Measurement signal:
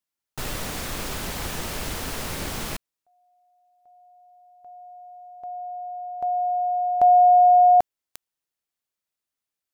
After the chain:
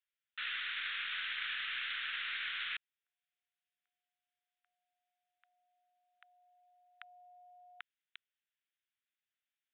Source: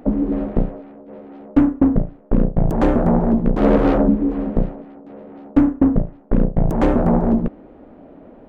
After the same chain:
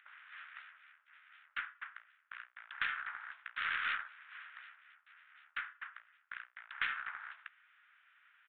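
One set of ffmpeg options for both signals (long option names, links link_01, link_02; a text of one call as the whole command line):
ffmpeg -i in.wav -af "asuperpass=centerf=2900:order=12:qfactor=0.67,aeval=exprs='0.112*(cos(1*acos(clip(val(0)/0.112,-1,1)))-cos(1*PI/2))+0.00316*(cos(4*acos(clip(val(0)/0.112,-1,1)))-cos(4*PI/2))':channel_layout=same,aresample=8000,aresample=44100" out.wav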